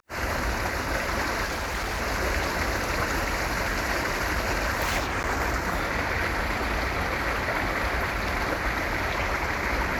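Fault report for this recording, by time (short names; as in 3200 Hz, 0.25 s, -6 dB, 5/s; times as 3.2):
1.44–2.02 clipped -26 dBFS
5.23–5.24 gap 9.5 ms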